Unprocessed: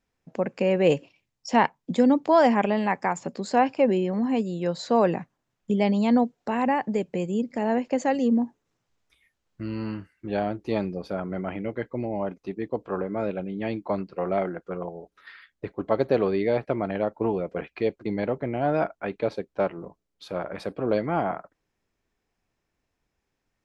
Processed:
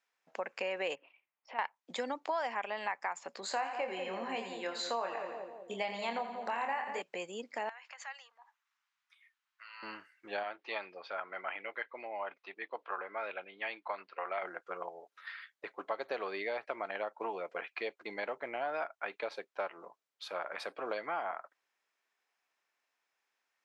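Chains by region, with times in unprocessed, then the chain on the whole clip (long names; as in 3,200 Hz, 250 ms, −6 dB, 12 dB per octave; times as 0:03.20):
0:00.95–0:01.59: low-pass filter 2,600 Hz 24 dB per octave + parametric band 1,700 Hz −5 dB 0.31 octaves + downward compressor 2 to 1, threshold −44 dBFS
0:03.40–0:07.02: notch filter 5,300 Hz, Q 8.6 + double-tracking delay 26 ms −6 dB + echo with a time of its own for lows and highs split 650 Hz, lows 189 ms, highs 85 ms, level −9 dB
0:07.69–0:09.83: high-shelf EQ 5,900 Hz −10.5 dB + downward compressor 10 to 1, threshold −28 dBFS + high-pass filter 1,000 Hz 24 dB per octave
0:10.43–0:14.43: Bessel low-pass filter 2,400 Hz, order 4 + spectral tilt +4 dB per octave
whole clip: high-pass filter 1,000 Hz 12 dB per octave; high-shelf EQ 4,700 Hz −7 dB; downward compressor 4 to 1, threshold −36 dBFS; level +2.5 dB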